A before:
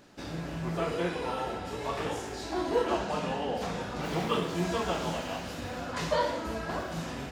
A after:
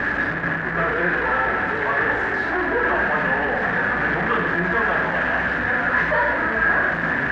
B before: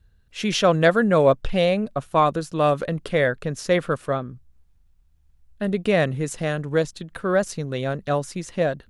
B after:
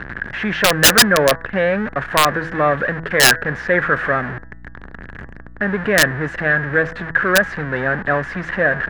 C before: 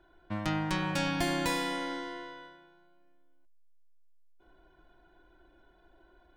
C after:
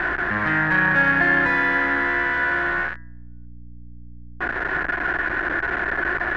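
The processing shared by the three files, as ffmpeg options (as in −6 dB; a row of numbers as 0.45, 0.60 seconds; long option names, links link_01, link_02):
-filter_complex "[0:a]aeval=exprs='val(0)+0.5*0.0841*sgn(val(0))':channel_layout=same,lowpass=frequency=1700:width_type=q:width=8.6,acrossover=split=120[link_01][link_02];[link_01]acompressor=threshold=-40dB:ratio=6[link_03];[link_03][link_02]amix=inputs=2:normalize=0,aeval=exprs='(mod(1.26*val(0)+1,2)-1)/1.26':channel_layout=same,bandreject=frequency=164:width_type=h:width=4,bandreject=frequency=328:width_type=h:width=4,bandreject=frequency=492:width_type=h:width=4,bandreject=frequency=656:width_type=h:width=4,bandreject=frequency=820:width_type=h:width=4,bandreject=frequency=984:width_type=h:width=4,bandreject=frequency=1148:width_type=h:width=4,bandreject=frequency=1312:width_type=h:width=4,bandreject=frequency=1476:width_type=h:width=4,bandreject=frequency=1640:width_type=h:width=4,bandreject=frequency=1804:width_type=h:width=4,bandreject=frequency=1968:width_type=h:width=4,aeval=exprs='val(0)+0.01*(sin(2*PI*60*n/s)+sin(2*PI*2*60*n/s)/2+sin(2*PI*3*60*n/s)/3+sin(2*PI*4*60*n/s)/4+sin(2*PI*5*60*n/s)/5)':channel_layout=same,volume=-1dB"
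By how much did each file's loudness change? +12.5, +6.0, +12.0 LU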